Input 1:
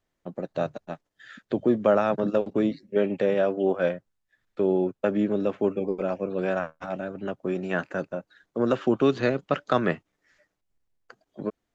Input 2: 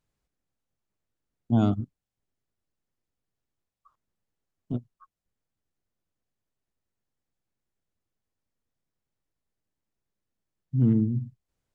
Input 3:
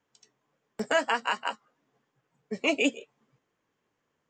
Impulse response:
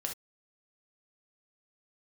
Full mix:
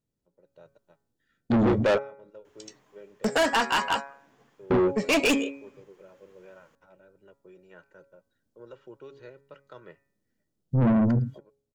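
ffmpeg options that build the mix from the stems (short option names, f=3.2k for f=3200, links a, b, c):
-filter_complex "[0:a]aecho=1:1:2.1:0.71,acompressor=mode=upward:threshold=-47dB:ratio=2.5,volume=-2.5dB[a];[1:a]equalizer=f=125:t=o:w=1:g=5,equalizer=f=250:t=o:w=1:g=9,equalizer=f=500:t=o:w=1:g=5,equalizer=f=1k:t=o:w=1:g=-4,equalizer=f=2k:t=o:w=1:g=-10,volume=-7dB,asplit=2[b][c];[2:a]adelay=2450,volume=1.5dB[d];[c]apad=whole_len=517830[e];[a][e]sidechaingate=range=-34dB:threshold=-46dB:ratio=16:detection=peak[f];[f][b][d]amix=inputs=3:normalize=0,bandreject=f=138.7:t=h:w=4,bandreject=f=277.4:t=h:w=4,bandreject=f=416.1:t=h:w=4,bandreject=f=554.8:t=h:w=4,bandreject=f=693.5:t=h:w=4,bandreject=f=832.2:t=h:w=4,bandreject=f=970.9:t=h:w=4,bandreject=f=1.1096k:t=h:w=4,bandreject=f=1.2483k:t=h:w=4,bandreject=f=1.387k:t=h:w=4,bandreject=f=1.5257k:t=h:w=4,bandreject=f=1.6644k:t=h:w=4,bandreject=f=1.8031k:t=h:w=4,bandreject=f=1.9418k:t=h:w=4,bandreject=f=2.0805k:t=h:w=4,bandreject=f=2.2192k:t=h:w=4,bandreject=f=2.3579k:t=h:w=4,bandreject=f=2.4966k:t=h:w=4,dynaudnorm=f=140:g=7:m=11.5dB,asoftclip=type=tanh:threshold=-18.5dB"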